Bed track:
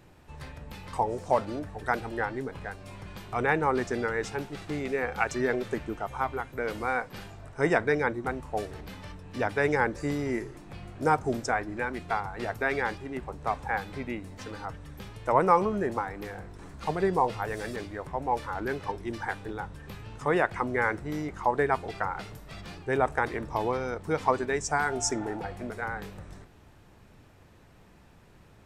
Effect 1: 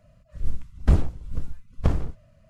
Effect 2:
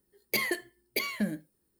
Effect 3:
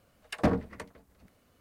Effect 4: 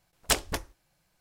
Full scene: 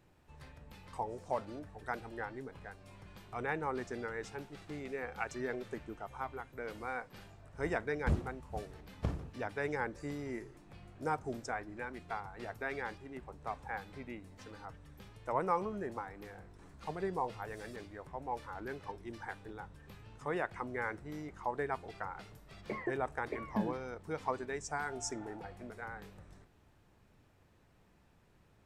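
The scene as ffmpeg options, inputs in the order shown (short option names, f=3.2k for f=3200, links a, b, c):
-filter_complex "[0:a]volume=-11dB[a];[1:a]highpass=69[b];[2:a]lowpass=f=1.5k:w=0.5412,lowpass=f=1.5k:w=1.3066[c];[b]atrim=end=2.49,asetpts=PTS-STARTPTS,volume=-11dB,afade=t=in:d=0.004:c=hsin,afade=t=out:st=2.486:d=0.004:c=hsin,adelay=7190[d];[c]atrim=end=1.79,asetpts=PTS-STARTPTS,volume=-4.5dB,afade=t=in:d=0.004:c=hsin,afade=t=out:st=1.786:d=0.004:c=hsin,adelay=22360[e];[a][d][e]amix=inputs=3:normalize=0"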